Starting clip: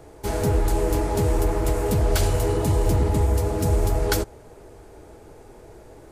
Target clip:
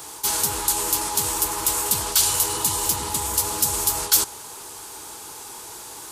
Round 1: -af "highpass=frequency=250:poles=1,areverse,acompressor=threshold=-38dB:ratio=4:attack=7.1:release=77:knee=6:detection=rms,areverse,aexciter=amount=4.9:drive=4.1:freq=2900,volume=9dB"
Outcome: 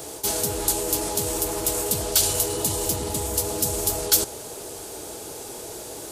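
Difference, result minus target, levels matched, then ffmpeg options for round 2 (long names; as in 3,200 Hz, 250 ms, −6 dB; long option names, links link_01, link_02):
1,000 Hz band −2.5 dB
-af "highpass=frequency=250:poles=1,lowshelf=frequency=770:width_type=q:width=3:gain=-7,areverse,acompressor=threshold=-38dB:ratio=4:attack=7.1:release=77:knee=6:detection=rms,areverse,aexciter=amount=4.9:drive=4.1:freq=2900,volume=9dB"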